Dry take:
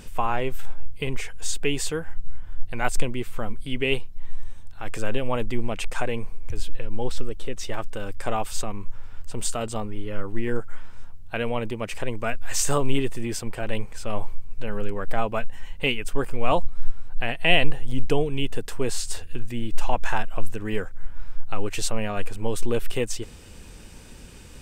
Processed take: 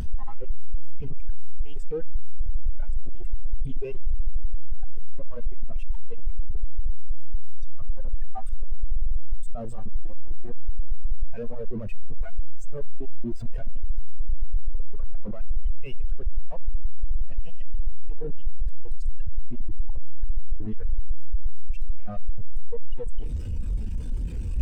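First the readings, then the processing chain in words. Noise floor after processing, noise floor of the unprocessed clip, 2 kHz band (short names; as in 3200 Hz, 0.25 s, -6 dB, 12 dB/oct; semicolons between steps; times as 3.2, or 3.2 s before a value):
-29 dBFS, -42 dBFS, -26.0 dB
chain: infinite clipping; spectral expander 2.5:1; gain +6 dB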